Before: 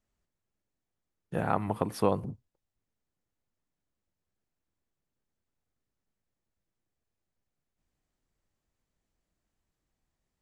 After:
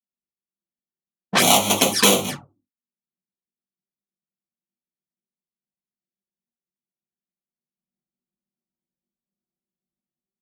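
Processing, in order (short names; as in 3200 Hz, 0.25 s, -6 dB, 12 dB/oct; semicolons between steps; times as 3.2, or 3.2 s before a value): half-waves squared off; doubler 21 ms -11 dB; AGC gain up to 7 dB; expander -29 dBFS; tilt +3 dB/oct; reverb RT60 0.25 s, pre-delay 4 ms, DRR -2.5 dB; low-pass opened by the level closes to 300 Hz, open at -13.5 dBFS; HPF 63 Hz 24 dB/oct; low shelf 400 Hz -7 dB; envelope flanger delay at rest 5.4 ms, full sweep at -15.5 dBFS; three-band squash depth 70%; gain +2.5 dB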